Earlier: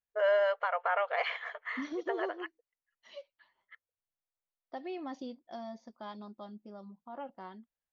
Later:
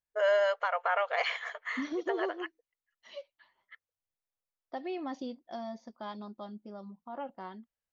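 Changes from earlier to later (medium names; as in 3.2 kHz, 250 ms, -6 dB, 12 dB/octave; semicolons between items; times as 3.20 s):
first voice: remove distance through air 210 m; second voice +3.0 dB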